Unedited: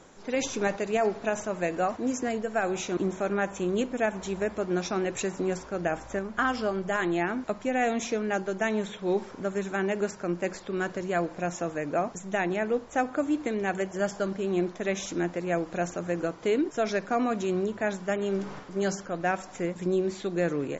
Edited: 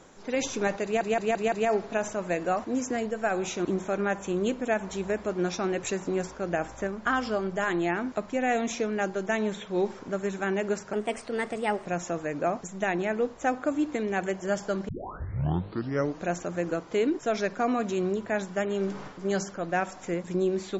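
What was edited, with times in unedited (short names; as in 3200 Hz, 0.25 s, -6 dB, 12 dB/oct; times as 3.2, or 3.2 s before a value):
0.84 stutter 0.17 s, 5 plays
10.25–11.37 speed 121%
14.4 tape start 1.36 s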